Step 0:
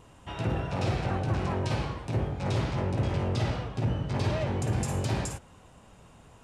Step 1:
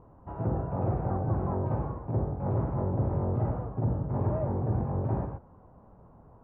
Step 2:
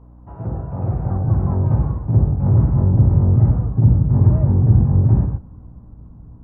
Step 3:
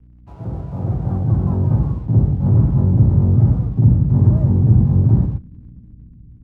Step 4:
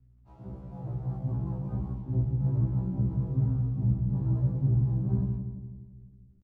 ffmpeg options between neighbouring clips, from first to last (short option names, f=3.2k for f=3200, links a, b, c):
-af "lowpass=f=1.1k:w=0.5412,lowpass=f=1.1k:w=1.3066"
-af "asubboost=boost=6.5:cutoff=230,dynaudnorm=f=210:g=11:m=5.5dB,aeval=exprs='val(0)+0.00708*(sin(2*PI*60*n/s)+sin(2*PI*2*60*n/s)/2+sin(2*PI*3*60*n/s)/3+sin(2*PI*4*60*n/s)/4+sin(2*PI*5*60*n/s)/5)':c=same"
-filter_complex "[0:a]acrossover=split=130|330[a][b][c];[b]dynaudnorm=f=180:g=7:m=6.5dB[d];[c]aeval=exprs='sgn(val(0))*max(abs(val(0))-0.00188,0)':c=same[e];[a][d][e]amix=inputs=3:normalize=0,volume=-2dB"
-filter_complex "[0:a]flanger=delay=7.4:depth=3.1:regen=38:speed=0.86:shape=sinusoidal,asplit=2[a][b];[b]adelay=170,lowpass=f=1k:p=1,volume=-7dB,asplit=2[c][d];[d]adelay=170,lowpass=f=1k:p=1,volume=0.55,asplit=2[e][f];[f]adelay=170,lowpass=f=1k:p=1,volume=0.55,asplit=2[g][h];[h]adelay=170,lowpass=f=1k:p=1,volume=0.55,asplit=2[i][j];[j]adelay=170,lowpass=f=1k:p=1,volume=0.55,asplit=2[k][l];[l]adelay=170,lowpass=f=1k:p=1,volume=0.55,asplit=2[m][n];[n]adelay=170,lowpass=f=1k:p=1,volume=0.55[o];[a][c][e][g][i][k][m][o]amix=inputs=8:normalize=0,afftfilt=real='re*1.73*eq(mod(b,3),0)':imag='im*1.73*eq(mod(b,3),0)':win_size=2048:overlap=0.75,volume=-8.5dB"